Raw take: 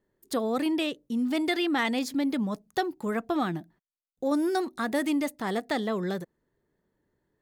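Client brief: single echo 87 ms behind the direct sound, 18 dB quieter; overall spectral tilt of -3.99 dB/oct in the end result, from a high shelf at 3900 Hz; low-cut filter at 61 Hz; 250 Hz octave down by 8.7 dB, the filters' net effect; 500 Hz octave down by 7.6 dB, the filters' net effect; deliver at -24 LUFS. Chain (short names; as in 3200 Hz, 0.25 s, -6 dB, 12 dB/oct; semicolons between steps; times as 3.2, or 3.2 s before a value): HPF 61 Hz; bell 250 Hz -8.5 dB; bell 500 Hz -7.5 dB; high shelf 3900 Hz +3.5 dB; echo 87 ms -18 dB; gain +9.5 dB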